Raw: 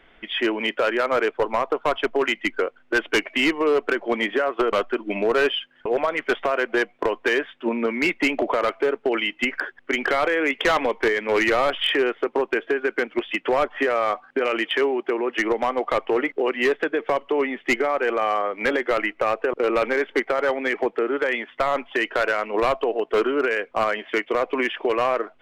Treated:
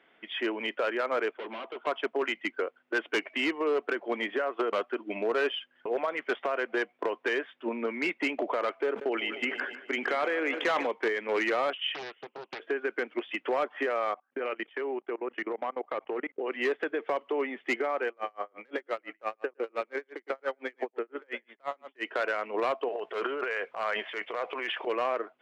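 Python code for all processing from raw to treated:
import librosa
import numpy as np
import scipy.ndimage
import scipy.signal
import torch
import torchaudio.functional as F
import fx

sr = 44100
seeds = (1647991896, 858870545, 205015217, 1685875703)

y = fx.chain(x, sr, fx.overload_stage(gain_db=31.0),
    fx.cabinet(low_hz=190.0, low_slope=24, high_hz=3700.0, hz=(220.0, 360.0, 630.0, 1500.0, 2200.0, 3100.0), db=(4, 7, 3, 4, 5, 9)), at=(1.35, 1.87))
y = fx.chain(y, sr, fx.echo_feedback(ms=152, feedback_pct=58, wet_db=-15),
    fx.sustainer(db_per_s=82.0), at=(8.86, 10.87))
y = fx.chain(y, sr, fx.ladder_lowpass(hz=3000.0, resonance_pct=80),
    fx.doppler_dist(depth_ms=0.58), at=(11.73, 12.6))
y = fx.chain(y, sr, fx.lowpass(hz=3100.0, slope=12),
    fx.level_steps(step_db=24), at=(14.14, 16.5))
y = fx.chain(y, sr, fx.echo_single(ms=110, db=-13.0),
    fx.tremolo_db(hz=5.8, depth_db=38), at=(18.07, 22.03))
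y = fx.chain(y, sr, fx.peak_eq(hz=270.0, db=-10.5, octaves=0.93),
    fx.transient(attack_db=-7, sustain_db=10), at=(22.88, 24.87))
y = scipy.signal.sosfilt(scipy.signal.butter(2, 230.0, 'highpass', fs=sr, output='sos'), y)
y = fx.high_shelf(y, sr, hz=7000.0, db=-10.0)
y = F.gain(torch.from_numpy(y), -7.5).numpy()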